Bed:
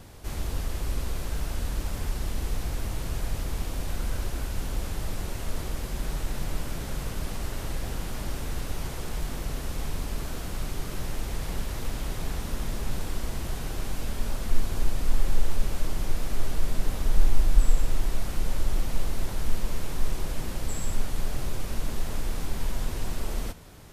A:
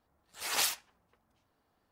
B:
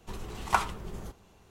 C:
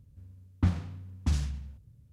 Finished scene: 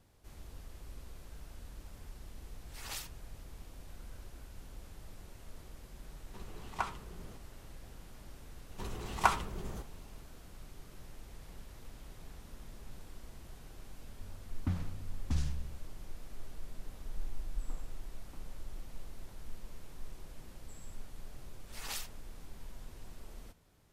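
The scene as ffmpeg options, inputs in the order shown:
-filter_complex "[1:a]asplit=2[a][b];[2:a]asplit=2[c][d];[3:a]asplit=2[e][f];[0:a]volume=-19dB[g];[c]highshelf=f=9.8k:g=-11[h];[e]alimiter=limit=-19dB:level=0:latency=1:release=85[i];[f]asuperpass=centerf=680:order=4:qfactor=0.75[j];[a]atrim=end=1.91,asetpts=PTS-STARTPTS,volume=-13dB,afade=t=in:d=0.004:c=hsin,afade=t=out:st=1.906:d=0.004:c=hsin,adelay=2330[k];[h]atrim=end=1.5,asetpts=PTS-STARTPTS,volume=-10dB,afade=t=in:d=0.004:c=hsin,afade=t=out:st=1.496:d=0.004:c=hsin,adelay=276066S[l];[d]atrim=end=1.5,asetpts=PTS-STARTPTS,volume=-1.5dB,afade=t=in:d=0.004:c=hsin,afade=t=out:st=1.496:d=0.004:c=hsin,adelay=8710[m];[i]atrim=end=2.12,asetpts=PTS-STARTPTS,volume=-5dB,afade=t=in:d=0.004:c=hsin,afade=t=out:st=2.116:d=0.004:c=hsin,adelay=14040[n];[j]atrim=end=2.12,asetpts=PTS-STARTPTS,volume=-15dB,afade=t=in:d=0.004:c=hsin,afade=t=out:st=2.116:d=0.004:c=hsin,adelay=17070[o];[b]atrim=end=1.91,asetpts=PTS-STARTPTS,volume=-11.5dB,afade=t=in:d=0.004:c=hsin,afade=t=out:st=1.906:d=0.004:c=hsin,adelay=940212S[p];[g][k][l][m][n][o][p]amix=inputs=7:normalize=0"

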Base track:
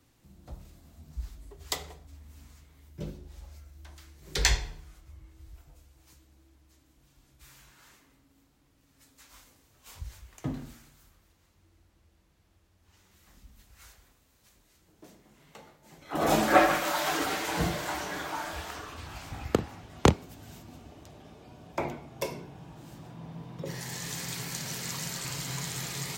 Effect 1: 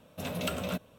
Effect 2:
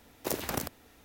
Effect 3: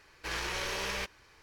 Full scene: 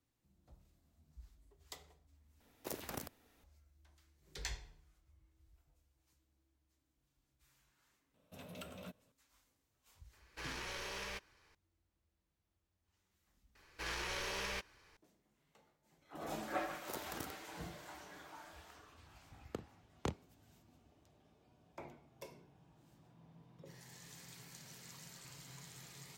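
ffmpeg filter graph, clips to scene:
-filter_complex "[2:a]asplit=2[a][b];[3:a]asplit=2[c][d];[0:a]volume=-19dB,asplit=2[e][f];[e]atrim=end=2.404[g];[a]atrim=end=1.04,asetpts=PTS-STARTPTS,volume=-11.5dB[h];[f]atrim=start=3.436[i];[1:a]atrim=end=0.98,asetpts=PTS-STARTPTS,volume=-17dB,afade=t=in:d=0.004:c=hsin,afade=t=out:st=0.976:d=0.004:c=hsin,adelay=8140[j];[c]atrim=end=1.42,asetpts=PTS-STARTPTS,volume=-9.5dB,afade=t=in:d=0.004:c=hsin,afade=t=out:st=1.416:d=0.004:c=hsin,adelay=10130[k];[d]atrim=end=1.42,asetpts=PTS-STARTPTS,volume=-6dB,afade=t=in:d=0.004:c=hsin,afade=t=out:st=1.416:d=0.004:c=hsin,adelay=13550[l];[b]atrim=end=1.04,asetpts=PTS-STARTPTS,volume=-14dB,afade=t=in:d=0.004:c=hsin,afade=t=out:st=1.036:d=0.004:c=hsin,adelay=16630[m];[g][h]acrossfade=d=0.004:c1=hsin:c2=hsin[n];[n][i]acrossfade=d=0.004:c1=hsin:c2=hsin[o];[o][j][k][l][m]amix=inputs=5:normalize=0"

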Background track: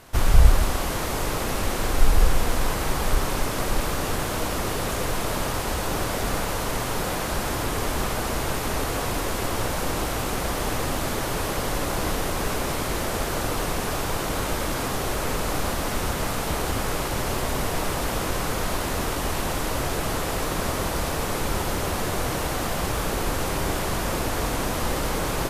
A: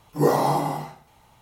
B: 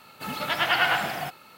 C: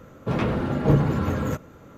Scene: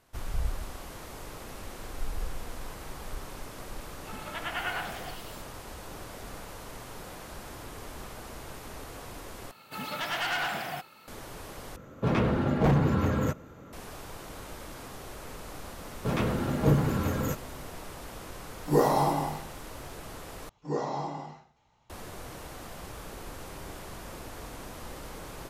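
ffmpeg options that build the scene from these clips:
-filter_complex "[2:a]asplit=2[a][b];[3:a]asplit=2[c][d];[1:a]asplit=2[e][f];[0:a]volume=-16.5dB[g];[a]acrossover=split=3900[h][i];[i]adelay=500[j];[h][j]amix=inputs=2:normalize=0[k];[b]asoftclip=type=tanh:threshold=-22dB[l];[c]aeval=exprs='0.188*(abs(mod(val(0)/0.188+3,4)-2)-1)':c=same[m];[d]aemphasis=mode=production:type=50kf[n];[f]aresample=16000,aresample=44100[o];[g]asplit=4[p][q][r][s];[p]atrim=end=9.514[t];[l]atrim=end=1.57,asetpts=PTS-STARTPTS,volume=-3.5dB[u];[q]atrim=start=11.076:end=11.764[v];[m]atrim=end=1.97,asetpts=PTS-STARTPTS,volume=-1.5dB[w];[r]atrim=start=13.726:end=20.494[x];[o]atrim=end=1.41,asetpts=PTS-STARTPTS,volume=-12dB[y];[s]atrim=start=21.896[z];[k]atrim=end=1.57,asetpts=PTS-STARTPTS,volume=-10.5dB,afade=t=in:d=0.004:c=hsin,afade=t=out:st=1.566:d=0.004:c=hsin,adelay=169785S[aa];[n]atrim=end=1.97,asetpts=PTS-STARTPTS,volume=-4.5dB,afade=t=in:d=0.004:c=hsin,afade=t=out:st=1.966:d=0.004:c=hsin,adelay=15780[ab];[e]atrim=end=1.41,asetpts=PTS-STARTPTS,volume=-3.5dB,afade=t=in:d=0.004:c=hsin,afade=t=out:st=1.406:d=0.004:c=hsin,adelay=18520[ac];[t][u]acrossfade=d=0.004:c1=hsin:c2=hsin[ad];[ad][v]acrossfade=d=0.004:c1=hsin:c2=hsin[ae];[ae][w]acrossfade=d=0.004:c1=hsin:c2=hsin[af];[af][x]acrossfade=d=0.004:c1=hsin:c2=hsin[ag];[ag][y]acrossfade=d=0.004:c1=hsin:c2=hsin[ah];[ah][z]acrossfade=d=0.004:c1=hsin:c2=hsin[ai];[ai][aa][ab][ac]amix=inputs=4:normalize=0"

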